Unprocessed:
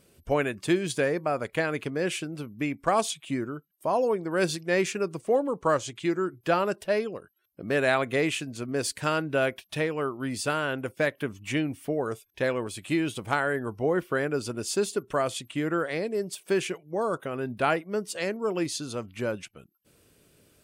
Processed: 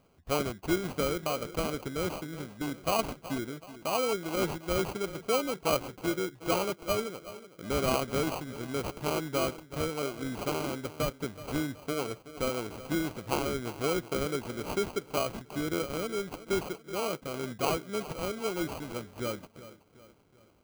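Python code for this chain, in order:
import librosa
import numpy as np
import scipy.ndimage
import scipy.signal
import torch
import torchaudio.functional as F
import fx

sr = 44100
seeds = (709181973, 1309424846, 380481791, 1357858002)

y = fx.echo_filtered(x, sr, ms=375, feedback_pct=44, hz=2800.0, wet_db=-15.0)
y = fx.sample_hold(y, sr, seeds[0], rate_hz=1800.0, jitter_pct=0)
y = y * 10.0 ** (-4.5 / 20.0)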